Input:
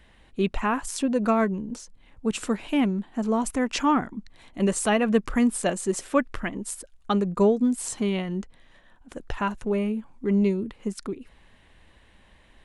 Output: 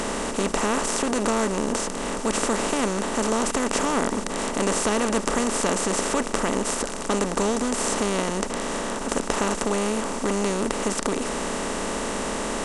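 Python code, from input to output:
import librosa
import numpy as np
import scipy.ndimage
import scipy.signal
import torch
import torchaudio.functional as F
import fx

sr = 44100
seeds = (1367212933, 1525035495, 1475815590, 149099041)

y = fx.bin_compress(x, sr, power=0.2)
y = fx.peak_eq(y, sr, hz=6400.0, db=9.0, octaves=1.0)
y = y * librosa.db_to_amplitude(-9.0)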